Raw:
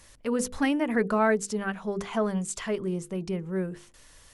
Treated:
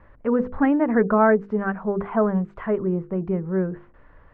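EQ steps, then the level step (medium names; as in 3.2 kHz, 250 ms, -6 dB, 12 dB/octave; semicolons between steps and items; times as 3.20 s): low-pass 1.6 kHz 24 dB/octave; +6.5 dB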